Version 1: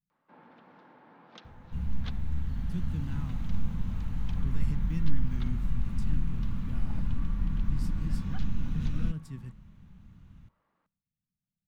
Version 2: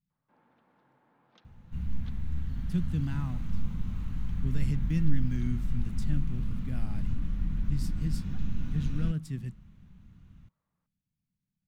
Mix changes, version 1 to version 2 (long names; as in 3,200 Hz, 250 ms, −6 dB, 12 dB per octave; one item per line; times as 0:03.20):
speech +6.5 dB
first sound −10.5 dB
reverb: off